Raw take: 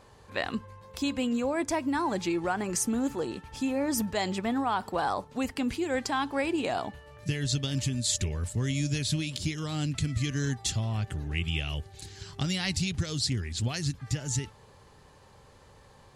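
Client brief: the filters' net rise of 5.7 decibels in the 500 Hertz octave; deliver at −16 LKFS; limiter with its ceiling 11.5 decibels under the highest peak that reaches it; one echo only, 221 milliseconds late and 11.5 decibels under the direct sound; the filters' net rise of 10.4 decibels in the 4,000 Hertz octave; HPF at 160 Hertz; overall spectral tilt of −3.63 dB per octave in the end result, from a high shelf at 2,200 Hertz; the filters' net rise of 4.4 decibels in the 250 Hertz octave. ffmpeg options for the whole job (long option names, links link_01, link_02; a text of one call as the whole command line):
ffmpeg -i in.wav -af "highpass=160,equalizer=frequency=250:width_type=o:gain=4.5,equalizer=frequency=500:width_type=o:gain=5.5,highshelf=frequency=2200:gain=5.5,equalizer=frequency=4000:width_type=o:gain=7.5,alimiter=limit=-17.5dB:level=0:latency=1,aecho=1:1:221:0.266,volume=12dB" out.wav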